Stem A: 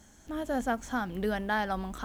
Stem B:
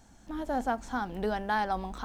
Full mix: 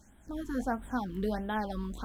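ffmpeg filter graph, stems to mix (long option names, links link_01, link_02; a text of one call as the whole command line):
ffmpeg -i stem1.wav -i stem2.wav -filter_complex "[0:a]volume=-5.5dB[link_01];[1:a]flanger=delay=18.5:depth=2.8:speed=1.3,volume=-6.5dB[link_02];[link_01][link_02]amix=inputs=2:normalize=0,lowshelf=frequency=290:gain=3.5,afftfilt=real='re*(1-between(b*sr/1024,630*pow(5700/630,0.5+0.5*sin(2*PI*1.5*pts/sr))/1.41,630*pow(5700/630,0.5+0.5*sin(2*PI*1.5*pts/sr))*1.41))':imag='im*(1-between(b*sr/1024,630*pow(5700/630,0.5+0.5*sin(2*PI*1.5*pts/sr))/1.41,630*pow(5700/630,0.5+0.5*sin(2*PI*1.5*pts/sr))*1.41))':win_size=1024:overlap=0.75" out.wav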